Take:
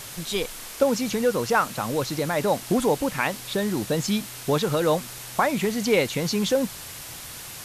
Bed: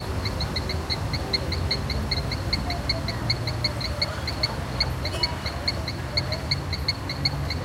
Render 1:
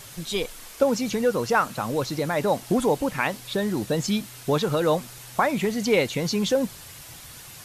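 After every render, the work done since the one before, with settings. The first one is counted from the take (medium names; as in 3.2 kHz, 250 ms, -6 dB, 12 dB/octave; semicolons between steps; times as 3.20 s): noise reduction 6 dB, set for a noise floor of -39 dBFS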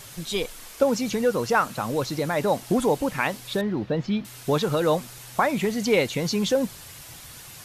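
3.61–4.25 s: distance through air 300 m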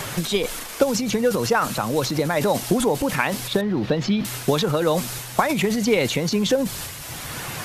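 transient shaper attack +5 dB, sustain +9 dB; three bands compressed up and down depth 70%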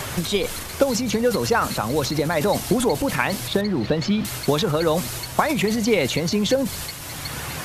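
add bed -10.5 dB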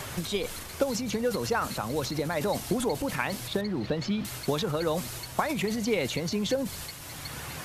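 trim -8 dB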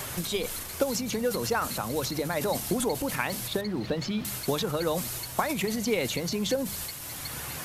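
treble shelf 9.5 kHz +10.5 dB; hum notches 50/100/150/200 Hz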